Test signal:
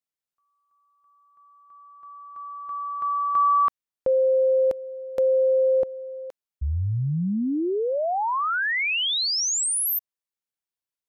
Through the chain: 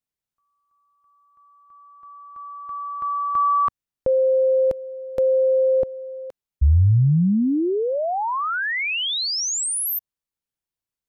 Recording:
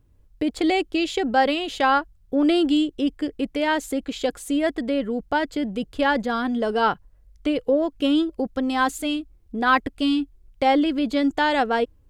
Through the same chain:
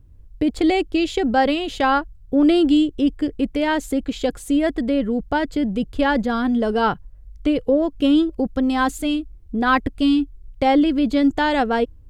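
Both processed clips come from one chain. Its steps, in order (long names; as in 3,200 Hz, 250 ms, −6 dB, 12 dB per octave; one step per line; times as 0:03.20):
low-shelf EQ 220 Hz +12 dB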